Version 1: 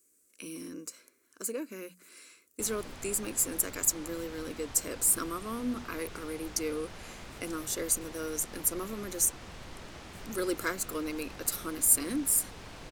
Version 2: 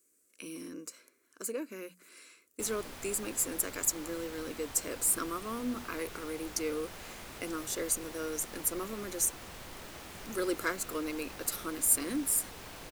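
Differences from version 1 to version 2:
background: remove air absorption 76 m; master: add tone controls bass -4 dB, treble -3 dB

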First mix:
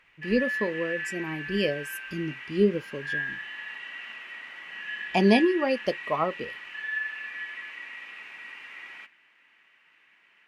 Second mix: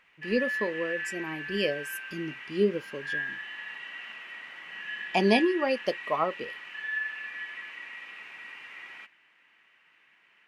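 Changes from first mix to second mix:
speech: add low shelf 180 Hz -11.5 dB; reverb: off

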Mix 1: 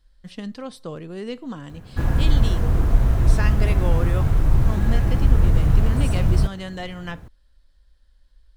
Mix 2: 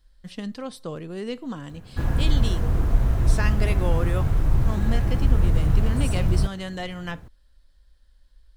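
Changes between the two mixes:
speech: add high shelf 9500 Hz +5 dB; background -3.0 dB

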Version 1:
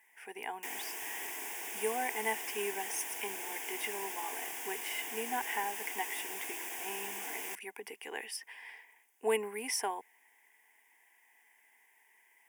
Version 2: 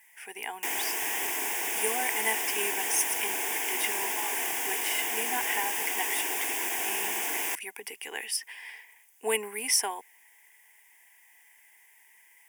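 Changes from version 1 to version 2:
speech: add high shelf 2000 Hz +11.5 dB; background +10.5 dB

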